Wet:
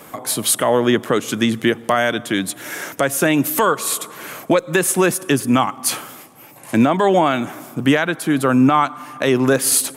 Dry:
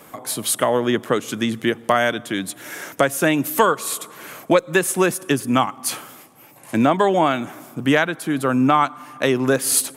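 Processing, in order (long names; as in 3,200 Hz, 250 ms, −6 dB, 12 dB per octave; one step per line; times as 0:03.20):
brickwall limiter −9.5 dBFS, peak gain reduction 7.5 dB
level +4.5 dB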